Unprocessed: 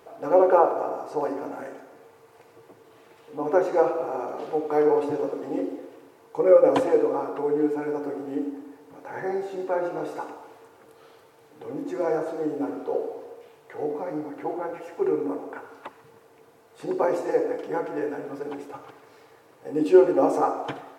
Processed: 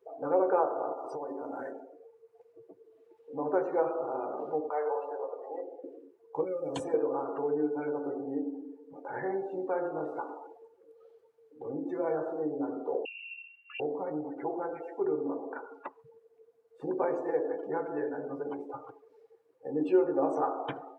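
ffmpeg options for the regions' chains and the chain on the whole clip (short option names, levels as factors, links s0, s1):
-filter_complex "[0:a]asettb=1/sr,asplit=3[s0][s1][s2];[s0]atrim=end=0.934[s3];[s1]atrim=start=0.93:end=1.71,asetpts=PTS-STARTPTS,afade=t=in:d=0.004:c=qsin,afade=t=out:st=0.776:d=0.004:c=qsin,bandreject=f=50:t=h:w=6,bandreject=f=100:t=h:w=6,bandreject=f=150:t=h:w=6,bandreject=f=200:t=h:w=6,bandreject=f=250:t=h:w=6,bandreject=f=300:t=h:w=6,bandreject=f=350:t=h:w=6,acompressor=threshold=0.0282:ratio=12:attack=3.2:release=140:knee=1:detection=peak,highshelf=f=4300:g=7.5[s4];[s2]atrim=start=1.706[s5];[s3][s4]acrossfade=d=0.004:c1=hsin:c2=qsin[s6];[s6][s5]acrossfade=d=0.004:c1=qsin:c2=hsin,asettb=1/sr,asplit=3[s7][s8][s9];[s7]atrim=end=4.694[s10];[s8]atrim=start=4.69:end=5.84,asetpts=PTS-STARTPTS,afade=t=in:d=0.004:c=qsin,afade=t=out:st=1.146:d=0.004:c=qsin,highpass=f=530:w=0.5412,highpass=f=530:w=1.3066,highshelf=f=2900:g=-6.5[s11];[s9]atrim=start=5.836[s12];[s10][s11]acrossfade=d=0.004:c1=hsin:c2=qsin[s13];[s13][s12]acrossfade=d=0.004:c1=qsin:c2=hsin,asettb=1/sr,asplit=3[s14][s15][s16];[s14]atrim=end=6.444[s17];[s15]atrim=start=6.44:end=6.94,asetpts=PTS-STARTPTS,afade=t=in:d=0.004:c=qsin,afade=t=out:st=0.496:d=0.004:c=qsin,highshelf=f=5700:g=10,acrossover=split=200|3000[s18][s19][s20];[s19]acompressor=threshold=0.02:ratio=3:attack=3.2:release=140:knee=2.83:detection=peak[s21];[s18][s21][s20]amix=inputs=3:normalize=0[s22];[s16]atrim=start=6.936[s23];[s17][s22]acrossfade=d=0.004:c1=hsin:c2=qsin[s24];[s24][s23]acrossfade=d=0.004:c1=qsin:c2=hsin,asettb=1/sr,asplit=3[s25][s26][s27];[s25]atrim=end=13.054[s28];[s26]atrim=start=13.05:end=13.8,asetpts=PTS-STARTPTS,afade=t=in:d=0.004:c=qsin,afade=t=out:st=0.746:d=0.004:c=qsin,acrossover=split=520|2000[s29][s30][s31];[s29]acompressor=threshold=0.00794:ratio=4[s32];[s30]acompressor=threshold=0.00631:ratio=4[s33];[s31]acompressor=threshold=0.001:ratio=4[s34];[s32][s33][s34]amix=inputs=3:normalize=0,lowpass=f=2700:t=q:w=0.5098,lowpass=f=2700:t=q:w=0.6013,lowpass=f=2700:t=q:w=0.9,lowpass=f=2700:t=q:w=2.563,afreqshift=-3200[s35];[s27]atrim=start=13.796[s36];[s28][s35]acrossfade=d=0.004:c1=hsin:c2=qsin[s37];[s37][s36]acrossfade=d=0.004:c1=qsin:c2=hsin,afftdn=nr=25:nf=-41,acompressor=threshold=0.0126:ratio=1.5"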